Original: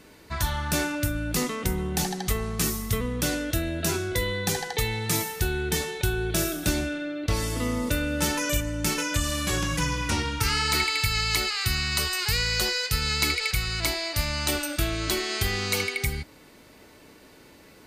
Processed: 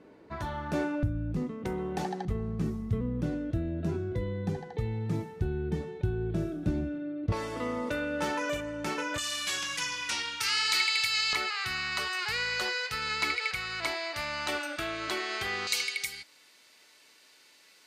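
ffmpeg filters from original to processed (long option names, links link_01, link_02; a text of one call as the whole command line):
ffmpeg -i in.wav -af "asetnsamples=nb_out_samples=441:pad=0,asendcmd='1.03 bandpass f 120;1.65 bandpass f 550;2.25 bandpass f 160;7.32 bandpass f 800;9.18 bandpass f 3500;11.33 bandpass f 1200;15.67 bandpass f 4800',bandpass=frequency=410:width_type=q:width=0.68:csg=0" out.wav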